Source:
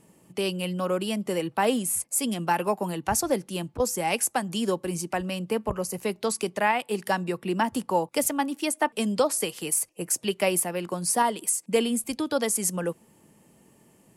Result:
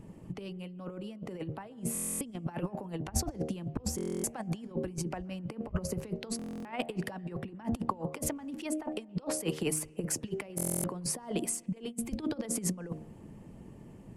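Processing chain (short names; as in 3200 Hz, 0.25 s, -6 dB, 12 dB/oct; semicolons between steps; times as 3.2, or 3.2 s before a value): RIAA curve playback; de-hum 77.28 Hz, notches 10; negative-ratio compressor -29 dBFS, ratio -0.5; harmonic-percussive split harmonic -5 dB; on a send at -24 dB: reverb RT60 1.1 s, pre-delay 0.119 s; on the sum: stuck buffer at 1.93/3.96/6.37/10.56, samples 1024, times 11; gain -2.5 dB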